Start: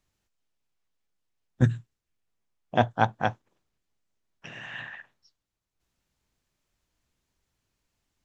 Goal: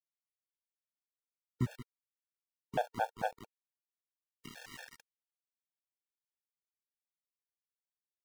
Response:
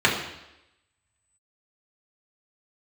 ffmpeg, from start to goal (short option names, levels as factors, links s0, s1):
-filter_complex "[0:a]aecho=1:1:170|340:0.1|0.026,acrossover=split=500|1200[s0][s1][s2];[s0]acompressor=threshold=0.0398:ratio=4[s3];[s1]acompressor=threshold=0.0316:ratio=4[s4];[s2]acompressor=threshold=0.00891:ratio=4[s5];[s3][s4][s5]amix=inputs=3:normalize=0,asettb=1/sr,asplit=3[s6][s7][s8];[s6]atrim=end=3.314[s9];[s7]atrim=start=3.31:end=4.88,asetpts=PTS-STARTPTS,afade=t=in:d=0.004:c=qsin,afade=t=out:st=1.566:d=0.004:c=qsin,equalizer=f=250:t=o:w=0.69:g=10.5[s10];[s8]atrim=start=4.876[s11];[s9][s10]acrossfade=d=0.004:c1=hsin:c2=qsin[s12];[s12][s11]acrossfade=d=0.004:c1=qsin:c2=hsin,aeval=exprs='val(0)*gte(abs(val(0)),0.0141)':c=same,afftfilt=real='re*gt(sin(2*PI*4.5*pts/sr)*(1-2*mod(floor(b*sr/1024/460),2)),0)':imag='im*gt(sin(2*PI*4.5*pts/sr)*(1-2*mod(floor(b*sr/1024/460),2)),0)':win_size=1024:overlap=0.75,volume=0.708"